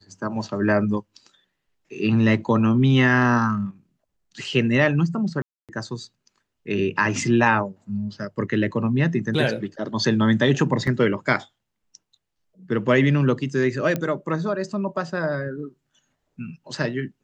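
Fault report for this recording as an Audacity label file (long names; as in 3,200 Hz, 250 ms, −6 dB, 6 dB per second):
5.420000	5.690000	drop-out 267 ms
10.870000	10.870000	drop-out 3.8 ms
13.960000	13.960000	click −12 dBFS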